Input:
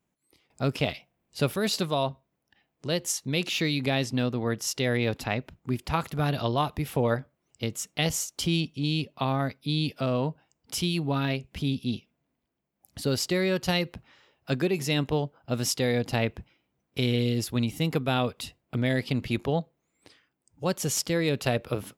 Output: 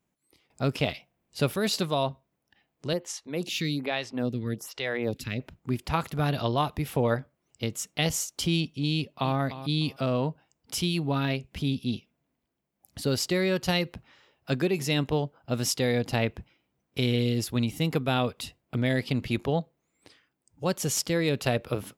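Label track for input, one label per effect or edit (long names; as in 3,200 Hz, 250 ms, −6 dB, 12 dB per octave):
2.930000	5.400000	phaser with staggered stages 1.2 Hz
8.940000	9.360000	delay throw 300 ms, feedback 20%, level −13 dB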